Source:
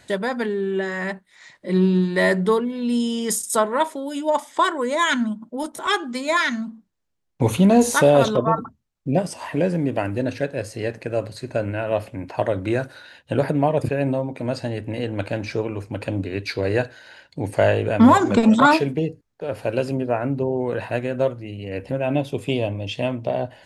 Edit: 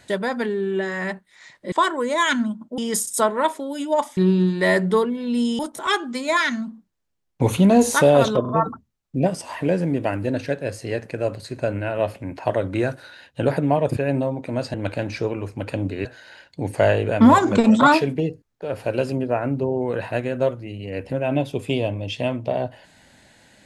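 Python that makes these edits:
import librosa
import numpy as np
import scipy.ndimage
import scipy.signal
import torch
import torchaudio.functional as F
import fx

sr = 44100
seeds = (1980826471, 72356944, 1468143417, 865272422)

y = fx.edit(x, sr, fx.swap(start_s=1.72, length_s=1.42, other_s=4.53, other_length_s=1.06),
    fx.stutter(start_s=8.41, slice_s=0.04, count=3),
    fx.cut(start_s=14.66, length_s=0.42),
    fx.cut(start_s=16.39, length_s=0.45), tone=tone)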